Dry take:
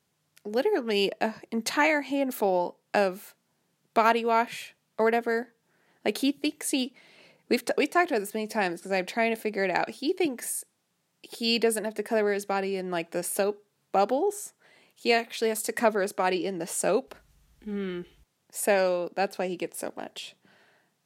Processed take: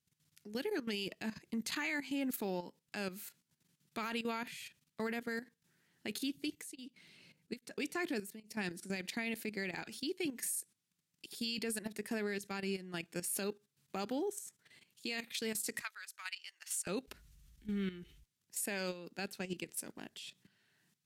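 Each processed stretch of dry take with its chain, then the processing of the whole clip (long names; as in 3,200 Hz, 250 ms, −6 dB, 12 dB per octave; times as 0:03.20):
0:06.35–0:08.96: low-shelf EQ 400 Hz +4.5 dB + tremolo along a rectified sine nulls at 1.2 Hz
0:15.81–0:16.87: high-pass filter 1,200 Hz 24 dB per octave + transient designer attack −1 dB, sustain −8 dB
whole clip: guitar amp tone stack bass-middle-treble 6-0-2; output level in coarse steps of 13 dB; brickwall limiter −44.5 dBFS; level +16.5 dB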